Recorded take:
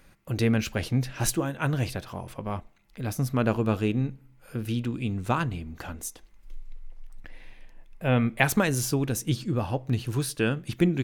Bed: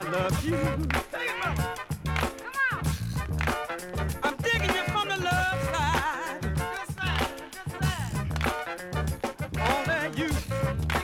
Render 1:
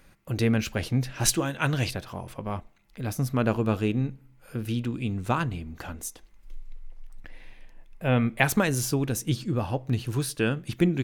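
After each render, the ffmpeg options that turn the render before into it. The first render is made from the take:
-filter_complex "[0:a]asettb=1/sr,asplit=3[s0][s1][s2];[s0]atrim=end=1.254[s3];[s1]atrim=start=1.25:end=1.91,asetpts=PTS-STARTPTS,afade=t=in:d=0.004:c=qsin,afade=t=out:st=0.656:d=0.004:c=qsin,equalizer=f=4100:t=o:w=2.5:g=7.5[s4];[s2]atrim=start=1.906[s5];[s3][s4]acrossfade=d=0.004:c1=hsin:c2=qsin[s6];[s6][s5]acrossfade=d=0.004:c1=qsin:c2=hsin"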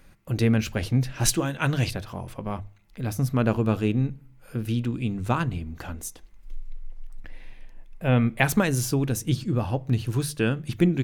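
-af "lowshelf=f=200:g=5,bandreject=f=50:t=h:w=6,bandreject=f=100:t=h:w=6,bandreject=f=150:t=h:w=6"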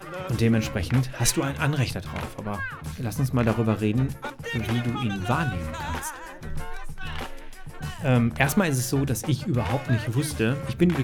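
-filter_complex "[1:a]volume=0.447[s0];[0:a][s0]amix=inputs=2:normalize=0"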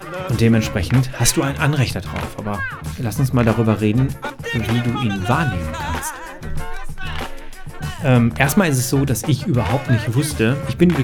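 -af "volume=2.24,alimiter=limit=0.891:level=0:latency=1"

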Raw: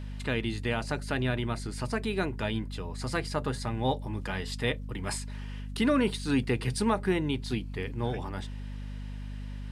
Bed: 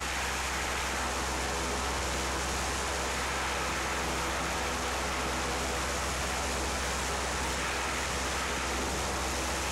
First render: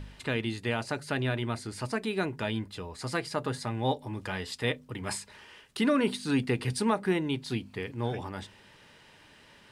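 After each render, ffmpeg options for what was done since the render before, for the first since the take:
-af "bandreject=f=50:t=h:w=4,bandreject=f=100:t=h:w=4,bandreject=f=150:t=h:w=4,bandreject=f=200:t=h:w=4,bandreject=f=250:t=h:w=4"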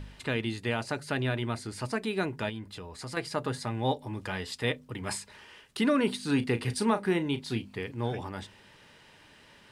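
-filter_complex "[0:a]asettb=1/sr,asplit=3[s0][s1][s2];[s0]atrim=end=2.494[s3];[s1]atrim=start=2.49:end=3.17,asetpts=PTS-STARTPTS,afade=t=in:d=0.004:c=qsin,afade=t=out:st=0.676:d=0.004:c=qsin,acompressor=threshold=0.0112:ratio=2:attack=3.2:release=140:knee=1:detection=peak[s4];[s2]atrim=start=3.166[s5];[s3][s4]acrossfade=d=0.004:c1=hsin:c2=qsin[s6];[s6][s5]acrossfade=d=0.004:c1=qsin:c2=hsin,asettb=1/sr,asplit=3[s7][s8][s9];[s7]atrim=end=6.194[s10];[s8]atrim=start=6.19:end=7.76,asetpts=PTS-STARTPTS,afade=t=in:d=0.004:c=qsin,afade=t=out:st=1.566:d=0.004:c=qsin,asplit=2[s11][s12];[s12]adelay=35,volume=0.237[s13];[s11][s13]amix=inputs=2:normalize=0,atrim=end_sample=69237[s14];[s9]atrim=start=7.756[s15];[s10][s14]acrossfade=d=0.004:c1=hsin:c2=qsin[s16];[s16][s15]acrossfade=d=0.004:c1=qsin:c2=hsin"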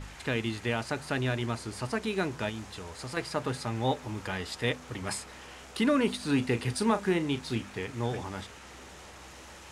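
-filter_complex "[1:a]volume=0.141[s0];[0:a][s0]amix=inputs=2:normalize=0"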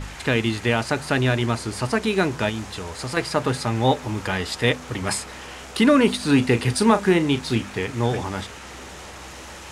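-af "volume=2.99"

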